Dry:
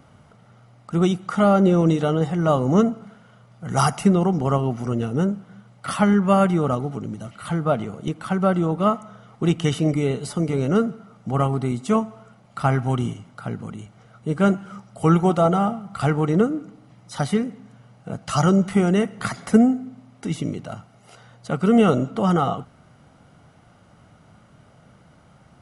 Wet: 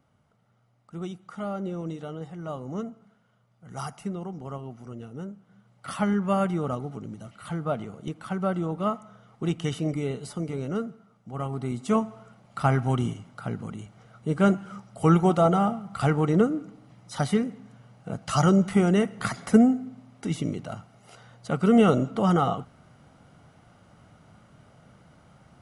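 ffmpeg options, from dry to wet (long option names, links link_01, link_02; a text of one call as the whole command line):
ffmpeg -i in.wav -af "volume=4.5dB,afade=type=in:start_time=5.37:duration=0.64:silence=0.375837,afade=type=out:start_time=10.21:duration=1.09:silence=0.446684,afade=type=in:start_time=11.3:duration=0.76:silence=0.251189" out.wav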